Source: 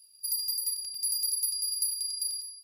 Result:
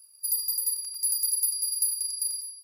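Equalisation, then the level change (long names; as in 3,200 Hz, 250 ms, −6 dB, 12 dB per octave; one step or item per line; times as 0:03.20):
low shelf with overshoot 720 Hz −11 dB, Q 3
parametric band 3,600 Hz −11.5 dB 1.2 octaves
+5.0 dB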